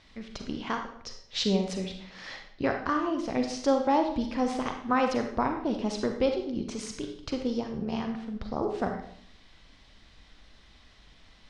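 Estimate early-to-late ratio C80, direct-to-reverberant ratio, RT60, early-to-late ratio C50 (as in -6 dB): 9.0 dB, 4.5 dB, 0.60 s, 5.5 dB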